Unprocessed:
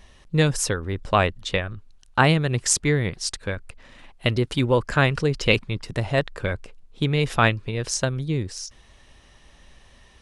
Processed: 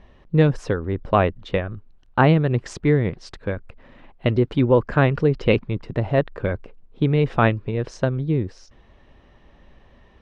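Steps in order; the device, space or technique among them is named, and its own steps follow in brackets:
phone in a pocket (low-pass filter 3,700 Hz 12 dB per octave; parametric band 320 Hz +5 dB 2.8 octaves; high-shelf EQ 2,300 Hz −9.5 dB)

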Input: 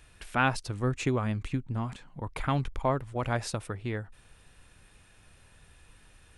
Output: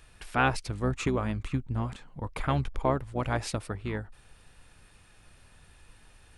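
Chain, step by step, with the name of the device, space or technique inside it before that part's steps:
octave pedal (pitch-shifted copies added −12 semitones −8 dB)

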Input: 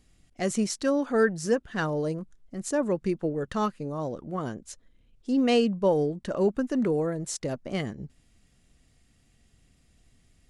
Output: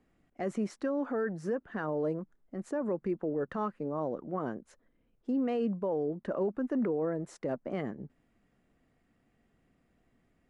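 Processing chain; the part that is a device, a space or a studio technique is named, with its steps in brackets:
DJ mixer with the lows and highs turned down (three-way crossover with the lows and the highs turned down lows −14 dB, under 180 Hz, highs −21 dB, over 2,000 Hz; brickwall limiter −24 dBFS, peak gain reduction 11 dB)

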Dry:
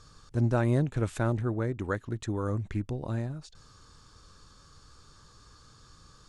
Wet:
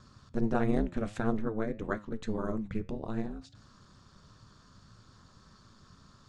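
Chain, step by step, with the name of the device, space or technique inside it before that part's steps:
high-frequency loss of the air 72 metres
alien voice (ring modulation 110 Hz; flanger 1.6 Hz, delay 8 ms, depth 3.6 ms, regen +83%)
level +5.5 dB

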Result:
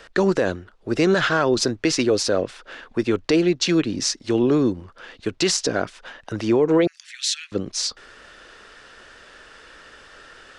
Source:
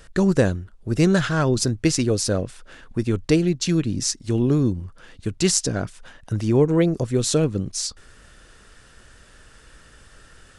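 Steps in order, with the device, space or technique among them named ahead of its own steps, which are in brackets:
DJ mixer with the lows and highs turned down (three-way crossover with the lows and the highs turned down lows −17 dB, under 290 Hz, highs −18 dB, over 5,600 Hz; brickwall limiter −17 dBFS, peak gain reduction 9.5 dB)
0:06.87–0:07.52: Butterworth high-pass 1,700 Hz 48 dB per octave
level +7.5 dB

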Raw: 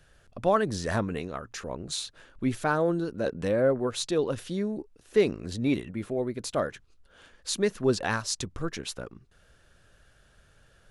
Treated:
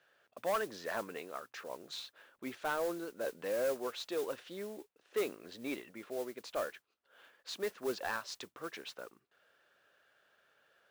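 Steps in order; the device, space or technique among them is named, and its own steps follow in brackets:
carbon microphone (band-pass filter 470–3,500 Hz; soft clipping −21.5 dBFS, distortion −14 dB; noise that follows the level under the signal 16 dB)
level −5 dB

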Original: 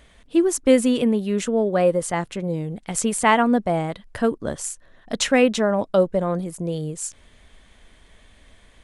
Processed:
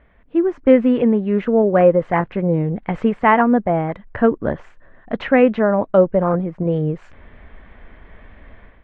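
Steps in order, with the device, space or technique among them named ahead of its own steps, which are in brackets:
action camera in a waterproof case (low-pass filter 2,100 Hz 24 dB per octave; automatic gain control gain up to 11 dB; level −1 dB; AAC 48 kbit/s 48,000 Hz)

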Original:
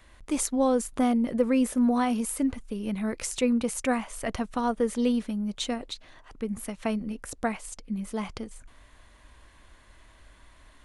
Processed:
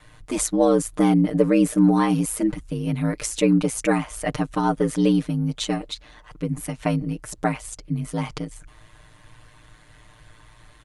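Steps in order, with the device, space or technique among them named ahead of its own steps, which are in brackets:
ring-modulated robot voice (ring modulation 56 Hz; comb filter 6.6 ms, depth 92%)
level +5 dB

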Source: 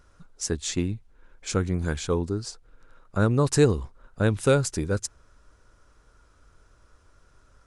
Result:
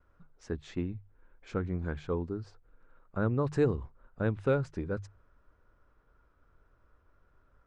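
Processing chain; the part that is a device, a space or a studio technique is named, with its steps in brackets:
hearing-loss simulation (low-pass filter 2,000 Hz 12 dB per octave; downward expander −57 dBFS)
mains-hum notches 50/100/150 Hz
0:03.53–0:04.33: parametric band 8,200 Hz +5.5 dB 0.81 octaves
level −7 dB

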